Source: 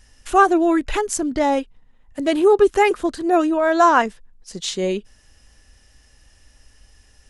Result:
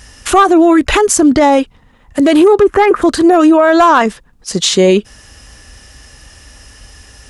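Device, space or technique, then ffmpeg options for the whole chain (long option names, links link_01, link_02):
mastering chain: -filter_complex "[0:a]asplit=3[link_01][link_02][link_03];[link_01]afade=type=out:start_time=2.61:duration=0.02[link_04];[link_02]highshelf=frequency=2600:width_type=q:width=1.5:gain=-13,afade=type=in:start_time=2.61:duration=0.02,afade=type=out:start_time=3.01:duration=0.02[link_05];[link_03]afade=type=in:start_time=3.01:duration=0.02[link_06];[link_04][link_05][link_06]amix=inputs=3:normalize=0,highpass=47,equalizer=frequency=1200:width_type=o:width=0.32:gain=4,acompressor=threshold=-16dB:ratio=2,asoftclip=type=tanh:threshold=-7dB,asoftclip=type=hard:threshold=-11.5dB,alimiter=level_in=17.5dB:limit=-1dB:release=50:level=0:latency=1,volume=-1dB"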